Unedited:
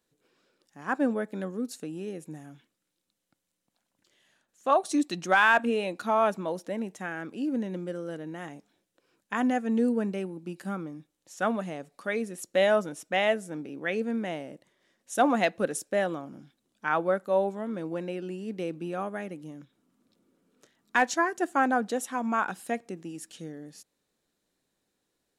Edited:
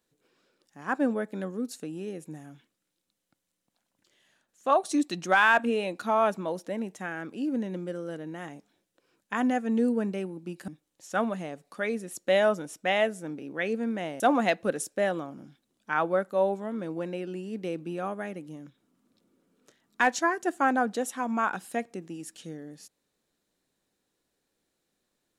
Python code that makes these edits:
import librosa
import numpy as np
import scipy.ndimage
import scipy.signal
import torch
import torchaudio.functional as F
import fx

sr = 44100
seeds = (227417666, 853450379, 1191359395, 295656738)

y = fx.edit(x, sr, fx.cut(start_s=10.68, length_s=0.27),
    fx.cut(start_s=14.47, length_s=0.68), tone=tone)